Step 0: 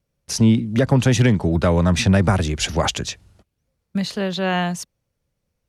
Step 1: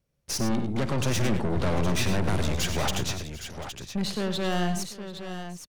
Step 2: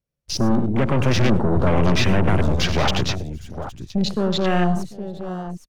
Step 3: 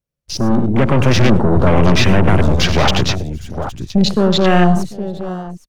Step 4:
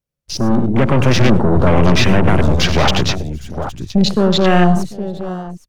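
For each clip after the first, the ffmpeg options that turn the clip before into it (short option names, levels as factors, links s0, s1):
-af "aeval=exprs='(tanh(17.8*val(0)+0.55)-tanh(0.55))/17.8':c=same,aecho=1:1:51|95|109|742|814:0.15|0.282|0.237|0.126|0.335"
-af "afwtdn=0.0158,volume=2.51"
-af "dynaudnorm=f=150:g=7:m=3.76"
-af "bandreject=f=50:t=h:w=6,bandreject=f=100:t=h:w=6"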